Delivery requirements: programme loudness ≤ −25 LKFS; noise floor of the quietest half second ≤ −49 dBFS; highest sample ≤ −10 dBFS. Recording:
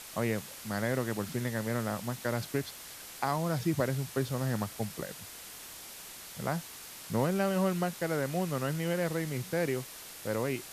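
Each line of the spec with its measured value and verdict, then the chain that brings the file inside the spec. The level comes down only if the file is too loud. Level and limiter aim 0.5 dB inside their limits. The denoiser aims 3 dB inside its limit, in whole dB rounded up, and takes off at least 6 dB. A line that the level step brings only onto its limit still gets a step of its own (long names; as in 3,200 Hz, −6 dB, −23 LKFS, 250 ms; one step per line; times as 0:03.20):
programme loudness −33.0 LKFS: in spec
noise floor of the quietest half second −47 dBFS: out of spec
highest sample −14.5 dBFS: in spec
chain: broadband denoise 6 dB, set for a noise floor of −47 dBFS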